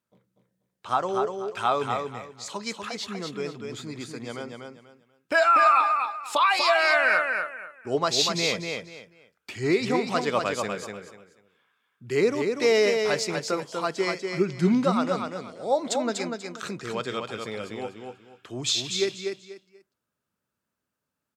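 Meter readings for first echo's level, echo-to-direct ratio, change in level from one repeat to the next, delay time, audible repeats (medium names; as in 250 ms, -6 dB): -5.0 dB, -4.5 dB, -12.0 dB, 243 ms, 3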